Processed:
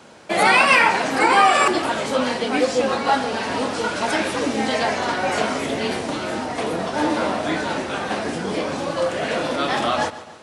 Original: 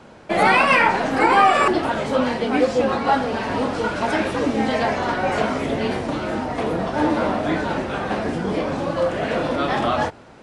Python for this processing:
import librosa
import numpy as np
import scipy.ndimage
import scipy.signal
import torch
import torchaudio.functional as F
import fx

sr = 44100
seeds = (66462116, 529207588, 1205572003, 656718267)

p1 = fx.highpass(x, sr, hz=170.0, slope=6)
p2 = fx.high_shelf(p1, sr, hz=3600.0, db=11.5)
p3 = p2 + fx.echo_feedback(p2, sr, ms=144, feedback_pct=47, wet_db=-16, dry=0)
y = F.gain(torch.from_numpy(p3), -1.0).numpy()